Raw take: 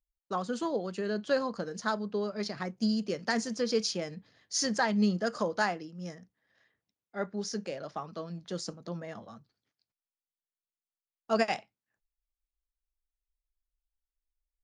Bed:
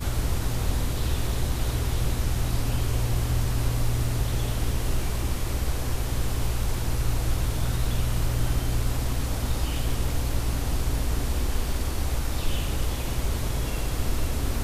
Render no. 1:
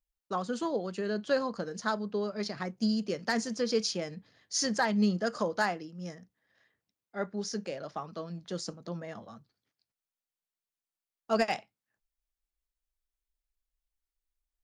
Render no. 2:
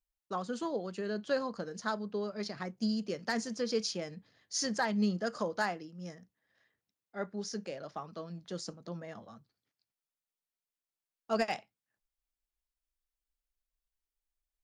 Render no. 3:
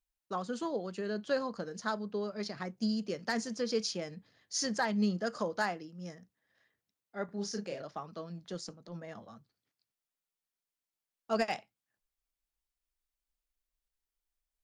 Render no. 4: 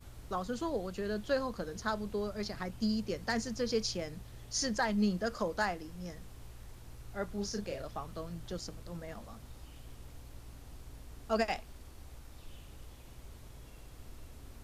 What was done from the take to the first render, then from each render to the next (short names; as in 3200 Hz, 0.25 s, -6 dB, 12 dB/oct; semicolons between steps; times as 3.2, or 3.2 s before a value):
overloaded stage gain 17.5 dB
gain -3.5 dB
7.25–7.82 doubler 35 ms -5 dB; 8.52–9.11 transient shaper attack -9 dB, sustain -3 dB
add bed -24 dB